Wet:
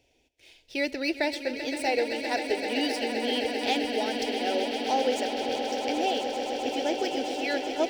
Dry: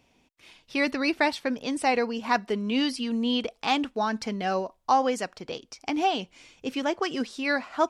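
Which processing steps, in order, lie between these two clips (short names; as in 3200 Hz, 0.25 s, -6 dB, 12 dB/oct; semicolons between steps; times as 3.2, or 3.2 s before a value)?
median filter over 3 samples; fixed phaser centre 470 Hz, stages 4; on a send: swelling echo 0.13 s, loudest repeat 8, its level -11 dB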